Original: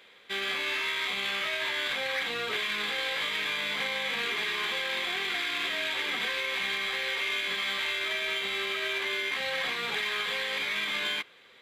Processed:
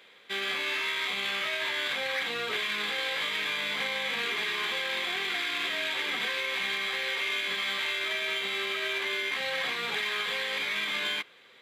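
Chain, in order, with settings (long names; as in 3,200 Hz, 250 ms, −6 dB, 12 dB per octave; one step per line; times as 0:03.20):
high-pass filter 97 Hz 12 dB per octave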